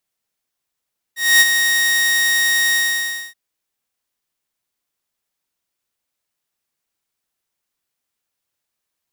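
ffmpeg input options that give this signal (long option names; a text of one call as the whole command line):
ffmpeg -f lavfi -i "aevalsrc='0.596*(2*mod(1870*t,1)-1)':duration=2.178:sample_rate=44100,afade=type=in:duration=0.247,afade=type=out:start_time=0.247:duration=0.035:silence=0.447,afade=type=out:start_time=1.58:duration=0.598" out.wav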